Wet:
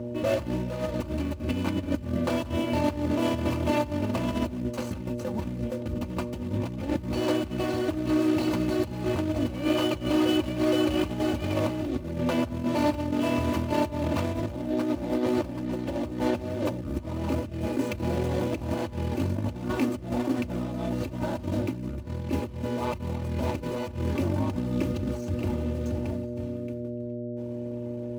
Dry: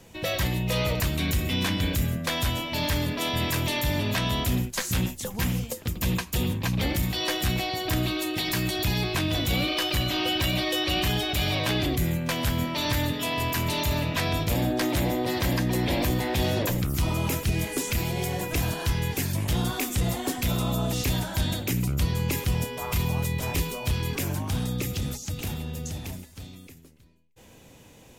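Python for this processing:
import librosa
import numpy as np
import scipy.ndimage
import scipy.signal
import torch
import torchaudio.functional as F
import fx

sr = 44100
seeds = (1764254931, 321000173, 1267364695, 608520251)

y = scipy.signal.medfilt(x, 25)
y = fx.dmg_buzz(y, sr, base_hz=120.0, harmonics=5, level_db=-39.0, tilt_db=-4, odd_only=False)
y = fx.over_compress(y, sr, threshold_db=-29.0, ratio=-0.5)
y = scipy.signal.sosfilt(scipy.signal.butter(4, 70.0, 'highpass', fs=sr, output='sos'), y)
y = fx.high_shelf(y, sr, hz=11000.0, db=-4.0)
y = y + 0.65 * np.pad(y, (int(3.4 * sr / 1000.0), 0))[:len(y)]
y = y + 10.0 ** (-23.5 / 20.0) * np.pad(y, (int(417 * sr / 1000.0), 0))[:len(y)]
y = fx.attack_slew(y, sr, db_per_s=170.0)
y = F.gain(torch.from_numpy(y), 2.0).numpy()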